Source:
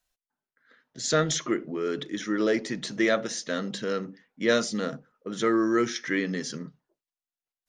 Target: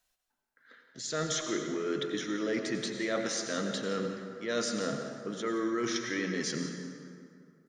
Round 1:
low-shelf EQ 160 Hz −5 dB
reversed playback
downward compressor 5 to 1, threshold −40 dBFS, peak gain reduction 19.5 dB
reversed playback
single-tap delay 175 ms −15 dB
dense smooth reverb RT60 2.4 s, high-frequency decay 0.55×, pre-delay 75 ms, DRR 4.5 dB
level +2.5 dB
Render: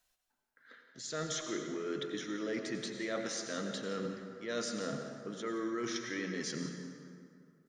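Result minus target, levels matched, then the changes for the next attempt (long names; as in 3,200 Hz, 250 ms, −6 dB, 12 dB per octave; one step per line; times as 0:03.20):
downward compressor: peak gain reduction +5 dB
change: downward compressor 5 to 1, threshold −33.5 dBFS, peak gain reduction 14.5 dB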